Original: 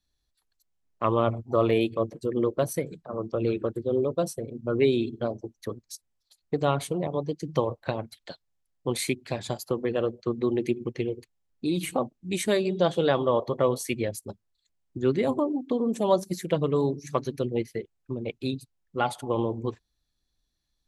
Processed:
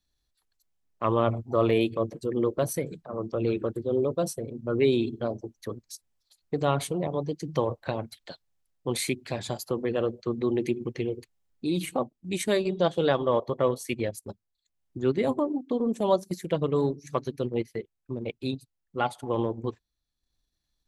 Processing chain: transient shaper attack -2 dB, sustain +2 dB, from 11.82 s sustain -6 dB

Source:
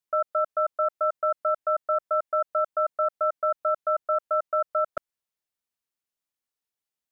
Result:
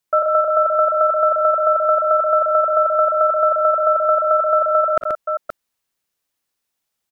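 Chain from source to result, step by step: multi-tap echo 43/59/130/525 ms -19/-7.5/-3.5/-6.5 dB; trim +9 dB

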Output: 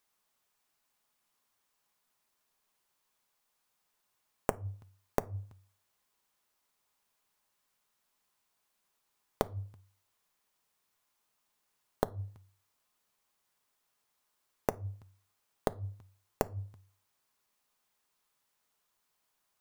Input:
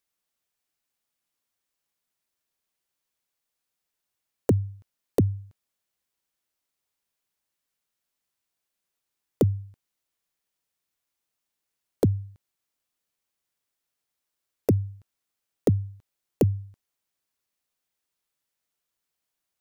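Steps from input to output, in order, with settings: peaking EQ 1 kHz +7 dB 0.91 oct; compression, threshold -25 dBFS, peak gain reduction 9 dB; inverted gate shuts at -20 dBFS, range -26 dB; reverberation RT60 0.45 s, pre-delay 5 ms, DRR 12 dB; trim +3.5 dB

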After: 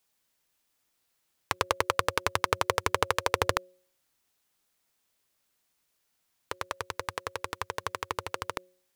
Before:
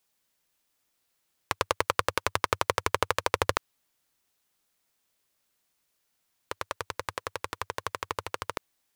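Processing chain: de-hum 182 Hz, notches 3

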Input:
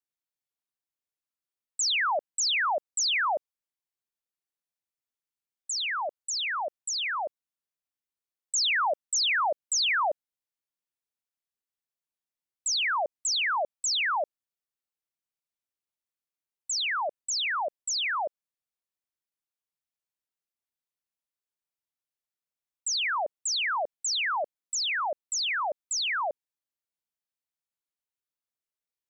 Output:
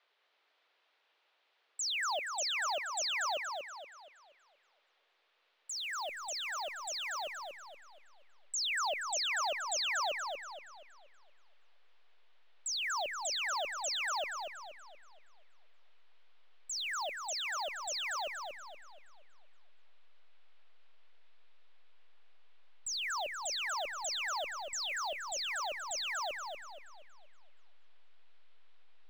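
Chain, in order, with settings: send-on-delta sampling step -43.5 dBFS; band noise 410–3800 Hz -68 dBFS; modulated delay 237 ms, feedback 42%, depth 54 cents, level -5 dB; trim -9 dB

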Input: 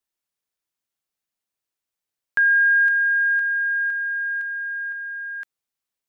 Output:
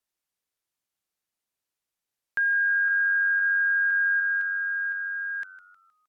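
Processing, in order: low-pass that closes with the level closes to 1.7 kHz, closed at -16.5 dBFS; 3.49–4.20 s: comb 4.2 ms, depth 91%; peak limiter -20 dBFS, peak gain reduction 7 dB; frequency-shifting echo 156 ms, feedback 42%, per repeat -93 Hz, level -16 dB

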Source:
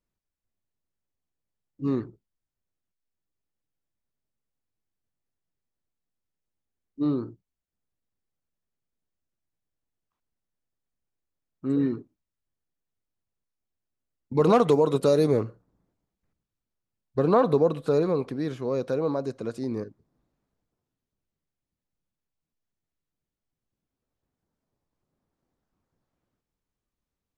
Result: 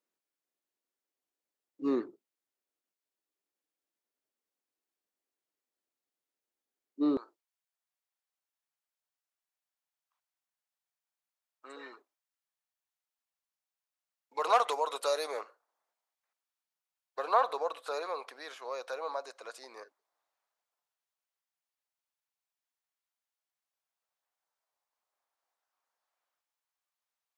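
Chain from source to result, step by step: high-pass 290 Hz 24 dB/octave, from 7.17 s 710 Hz

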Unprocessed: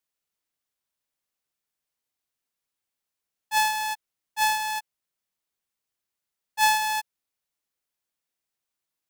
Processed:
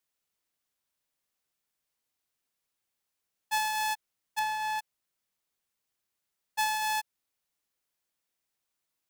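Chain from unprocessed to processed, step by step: compression 12:1, threshold -28 dBFS, peak gain reduction 12 dB; 4.39–4.79 s: treble shelf 3.7 kHz -11 dB; trim +1.5 dB

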